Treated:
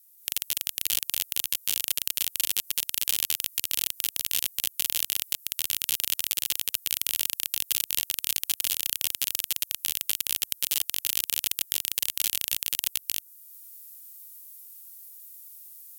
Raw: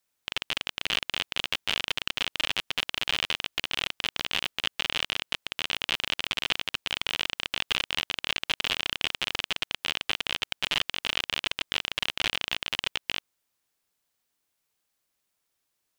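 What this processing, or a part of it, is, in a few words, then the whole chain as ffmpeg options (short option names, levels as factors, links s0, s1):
FM broadcast chain: -filter_complex "[0:a]highpass=80,dynaudnorm=f=170:g=3:m=3.76,acrossover=split=700|4600[s0][s1][s2];[s0]acompressor=threshold=0.0112:ratio=4[s3];[s1]acompressor=threshold=0.0224:ratio=4[s4];[s2]acompressor=threshold=0.0224:ratio=4[s5];[s3][s4][s5]amix=inputs=3:normalize=0,aemphasis=mode=production:type=75fm,alimiter=limit=0.501:level=0:latency=1:release=298,asoftclip=type=hard:threshold=0.316,lowpass=f=15000:w=0.5412,lowpass=f=15000:w=1.3066,aemphasis=mode=production:type=75fm,volume=0.376"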